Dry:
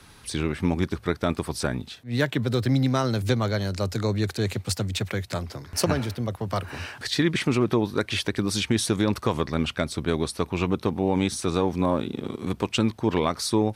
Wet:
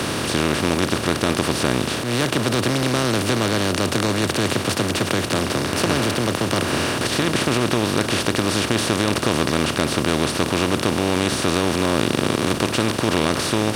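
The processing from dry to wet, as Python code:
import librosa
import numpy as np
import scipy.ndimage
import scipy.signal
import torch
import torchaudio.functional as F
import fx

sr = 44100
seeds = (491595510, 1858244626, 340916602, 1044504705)

y = fx.bin_compress(x, sr, power=0.2)
y = F.gain(torch.from_numpy(y), -4.5).numpy()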